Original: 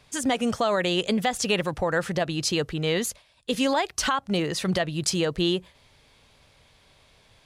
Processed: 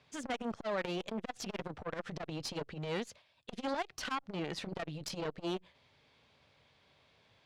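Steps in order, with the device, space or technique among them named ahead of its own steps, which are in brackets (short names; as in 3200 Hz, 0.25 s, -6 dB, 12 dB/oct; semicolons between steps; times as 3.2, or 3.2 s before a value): valve radio (BPF 97–4500 Hz; tube stage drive 22 dB, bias 0.65; core saturation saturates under 620 Hz); gain -4.5 dB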